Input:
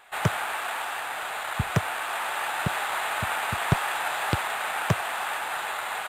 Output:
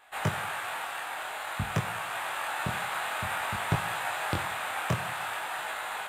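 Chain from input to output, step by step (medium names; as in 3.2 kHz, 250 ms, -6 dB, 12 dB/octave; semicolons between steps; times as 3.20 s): chorus 0.52 Hz, delay 18.5 ms, depth 5.8 ms; two-slope reverb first 0.83 s, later 2.6 s, from -20 dB, DRR 9.5 dB; trim -1.5 dB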